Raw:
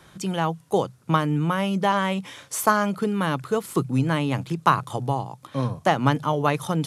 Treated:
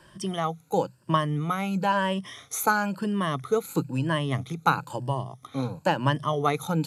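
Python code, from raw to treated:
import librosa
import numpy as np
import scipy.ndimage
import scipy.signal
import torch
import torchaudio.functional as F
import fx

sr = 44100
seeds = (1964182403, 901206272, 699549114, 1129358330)

y = fx.spec_ripple(x, sr, per_octave=1.3, drift_hz=1.0, depth_db=14)
y = F.gain(torch.from_numpy(y), -5.0).numpy()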